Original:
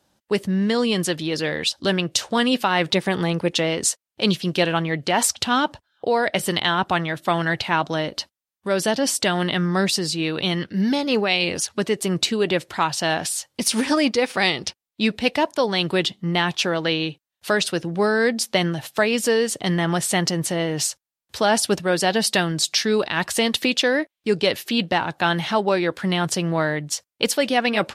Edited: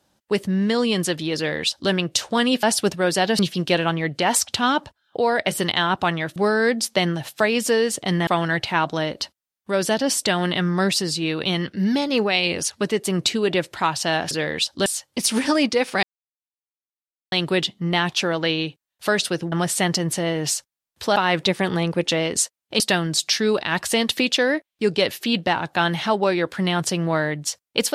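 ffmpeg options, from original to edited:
ffmpeg -i in.wav -filter_complex "[0:a]asplit=12[link_01][link_02][link_03][link_04][link_05][link_06][link_07][link_08][link_09][link_10][link_11][link_12];[link_01]atrim=end=2.632[link_13];[link_02]atrim=start=21.488:end=22.252[link_14];[link_03]atrim=start=4.268:end=7.242[link_15];[link_04]atrim=start=17.938:end=19.852[link_16];[link_05]atrim=start=7.238:end=13.282[link_17];[link_06]atrim=start=1.358:end=1.912[link_18];[link_07]atrim=start=13.278:end=14.45,asetpts=PTS-STARTPTS,afade=type=out:start_time=1.168:duration=0.004:curve=hsin[link_19];[link_08]atrim=start=14.45:end=15.74,asetpts=PTS-STARTPTS,volume=0[link_20];[link_09]atrim=start=15.74:end=17.942,asetpts=PTS-STARTPTS,afade=type=in:duration=0.004:curve=hsin[link_21];[link_10]atrim=start=19.848:end=21.492[link_22];[link_11]atrim=start=2.628:end=4.272[link_23];[link_12]atrim=start=22.248[link_24];[link_13][link_14]acrossfade=duration=0.004:curve1=hsin:curve2=hsin[link_25];[link_25][link_15]acrossfade=duration=0.004:curve1=hsin:curve2=hsin[link_26];[link_26][link_16]acrossfade=duration=0.004:curve1=hsin:curve2=hsin[link_27];[link_27][link_17]acrossfade=duration=0.004:curve1=hsin:curve2=hsin[link_28];[link_28][link_18]acrossfade=duration=0.004:curve1=hsin:curve2=hsin[link_29];[link_19][link_20][link_21]concat=n=3:v=0:a=1[link_30];[link_29][link_30]acrossfade=duration=0.004:curve1=hsin:curve2=hsin[link_31];[link_31][link_22]acrossfade=duration=0.004:curve1=hsin:curve2=hsin[link_32];[link_32][link_23]acrossfade=duration=0.004:curve1=hsin:curve2=hsin[link_33];[link_33][link_24]acrossfade=duration=0.004:curve1=hsin:curve2=hsin" out.wav

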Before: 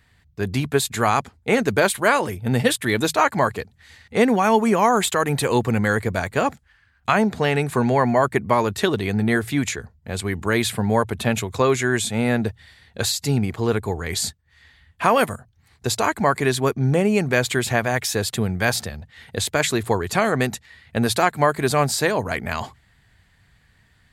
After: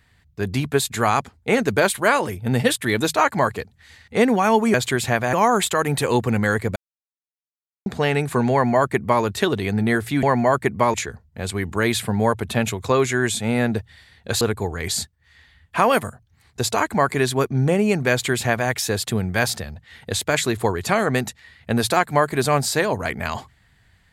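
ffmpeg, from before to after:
ffmpeg -i in.wav -filter_complex "[0:a]asplit=8[link_01][link_02][link_03][link_04][link_05][link_06][link_07][link_08];[link_01]atrim=end=4.742[link_09];[link_02]atrim=start=17.368:end=17.962[link_10];[link_03]atrim=start=4.738:end=6.17,asetpts=PTS-STARTPTS,afade=type=out:start_time=1.428:duration=0.004:curve=hsin[link_11];[link_04]atrim=start=6.17:end=7.27,asetpts=PTS-STARTPTS,volume=0[link_12];[link_05]atrim=start=7.27:end=9.642,asetpts=PTS-STARTPTS,afade=type=in:duration=0.004:curve=hsin[link_13];[link_06]atrim=start=7.928:end=8.642[link_14];[link_07]atrim=start=9.638:end=13.112[link_15];[link_08]atrim=start=13.668[link_16];[link_09][link_10]acrossfade=duration=0.004:curve1=hsin:curve2=hsin[link_17];[link_11][link_12][link_13]concat=n=3:v=0:a=1[link_18];[link_17][link_18]acrossfade=duration=0.004:curve1=hsin:curve2=hsin[link_19];[link_19][link_14]acrossfade=duration=0.004:curve1=hsin:curve2=hsin[link_20];[link_20][link_15]acrossfade=duration=0.004:curve1=hsin:curve2=hsin[link_21];[link_21][link_16]acrossfade=duration=0.004:curve1=hsin:curve2=hsin" out.wav

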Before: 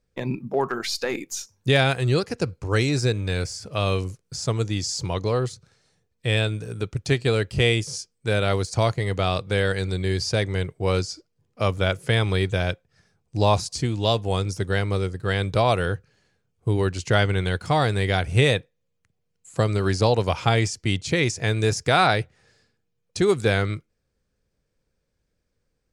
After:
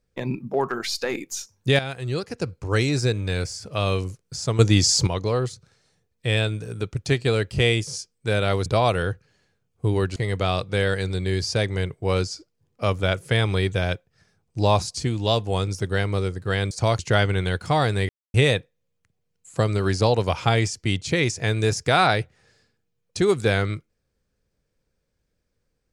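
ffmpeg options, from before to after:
ffmpeg -i in.wav -filter_complex "[0:a]asplit=10[link_01][link_02][link_03][link_04][link_05][link_06][link_07][link_08][link_09][link_10];[link_01]atrim=end=1.79,asetpts=PTS-STARTPTS,afade=type=out:start_time=1.786:duration=0.004:curve=hsin:silence=0.237137[link_11];[link_02]atrim=start=1.79:end=4.592,asetpts=PTS-STARTPTS,afade=type=in:duration=0.94:silence=0.237137[link_12];[link_03]atrim=start=4.588:end=5.072,asetpts=PTS-STARTPTS,volume=9dB[link_13];[link_04]atrim=start=5.068:end=8.662[link_14];[link_05]atrim=start=15.488:end=16.992[link_15];[link_06]atrim=start=8.938:end=15.492[link_16];[link_07]atrim=start=8.658:end=8.942[link_17];[link_08]atrim=start=16.988:end=18.09,asetpts=PTS-STARTPTS,afade=type=out:start_time=1.098:duration=0.004:curve=hsin[link_18];[link_09]atrim=start=18.09:end=18.34,asetpts=PTS-STARTPTS,volume=0[link_19];[link_10]atrim=start=18.34,asetpts=PTS-STARTPTS,afade=type=in:duration=0.004:curve=hsin[link_20];[link_11][link_12]concat=n=2:v=0:a=1[link_21];[link_21][link_13]acrossfade=duration=0.004:curve1=hsin:curve2=hsin[link_22];[link_22][link_14]acrossfade=duration=0.004:curve1=hsin:curve2=hsin[link_23];[link_23][link_15]acrossfade=duration=0.004:curve1=hsin:curve2=hsin[link_24];[link_24][link_16]acrossfade=duration=0.004:curve1=hsin:curve2=hsin[link_25];[link_25][link_17]acrossfade=duration=0.004:curve1=hsin:curve2=hsin[link_26];[link_18][link_19][link_20]concat=n=3:v=0:a=1[link_27];[link_26][link_27]acrossfade=duration=0.004:curve1=hsin:curve2=hsin" out.wav

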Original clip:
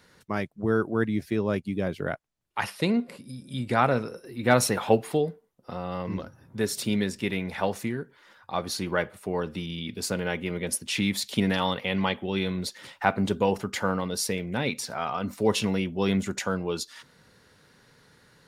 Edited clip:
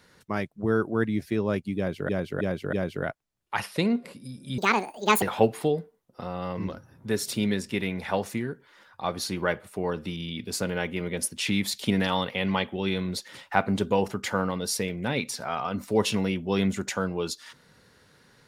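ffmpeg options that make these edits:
ffmpeg -i in.wav -filter_complex "[0:a]asplit=6[link_01][link_02][link_03][link_04][link_05][link_06];[link_01]atrim=end=2.092[link_07];[link_02]atrim=start=1.768:end=2.092[link_08];[link_03]atrim=start=1.768:end=2.092[link_09];[link_04]atrim=start=1.768:end=3.624[link_10];[link_05]atrim=start=3.62:end=4.72,asetpts=PTS-STARTPTS,asetrate=75411,aresample=44100,atrim=end_sample=28368,asetpts=PTS-STARTPTS[link_11];[link_06]atrim=start=4.716[link_12];[link_07][link_08]acrossfade=duration=0.004:curve1=hsin:curve2=hsin[link_13];[link_13][link_09]acrossfade=duration=0.004:curve1=hsin:curve2=hsin[link_14];[link_14][link_10]acrossfade=duration=0.004:curve1=hsin:curve2=hsin[link_15];[link_15][link_11]acrossfade=duration=0.004:curve1=hsin:curve2=hsin[link_16];[link_16][link_12]acrossfade=duration=0.004:curve1=hsin:curve2=hsin" out.wav

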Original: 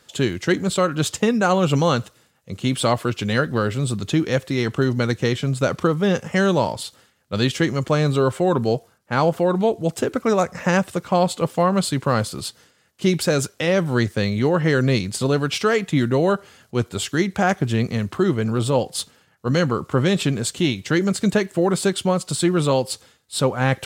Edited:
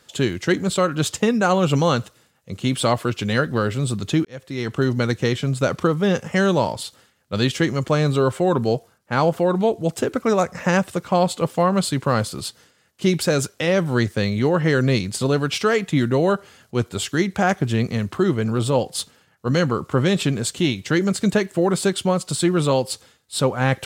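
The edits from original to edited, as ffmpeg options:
ffmpeg -i in.wav -filter_complex "[0:a]asplit=2[link_01][link_02];[link_01]atrim=end=4.25,asetpts=PTS-STARTPTS,afade=type=out:start_time=4.246:duration=0.004:curve=hsin[link_03];[link_02]atrim=start=4.25,asetpts=PTS-STARTPTS,afade=type=in:duration=0.6[link_04];[link_03][link_04]concat=n=2:v=0:a=1" out.wav

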